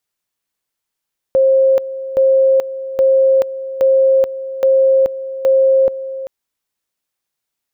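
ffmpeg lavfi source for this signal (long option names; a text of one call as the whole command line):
ffmpeg -f lavfi -i "aevalsrc='pow(10,(-8-14*gte(mod(t,0.82),0.43))/20)*sin(2*PI*533*t)':duration=4.92:sample_rate=44100" out.wav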